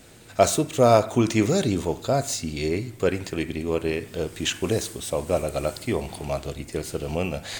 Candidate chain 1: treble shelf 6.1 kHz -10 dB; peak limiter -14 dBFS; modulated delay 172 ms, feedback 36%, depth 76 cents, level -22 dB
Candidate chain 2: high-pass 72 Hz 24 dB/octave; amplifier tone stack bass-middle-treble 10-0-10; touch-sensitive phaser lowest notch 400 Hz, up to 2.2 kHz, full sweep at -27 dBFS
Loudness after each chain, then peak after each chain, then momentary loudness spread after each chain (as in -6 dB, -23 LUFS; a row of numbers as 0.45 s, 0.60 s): -27.5 LUFS, -37.0 LUFS; -13.5 dBFS, -16.0 dBFS; 7 LU, 12 LU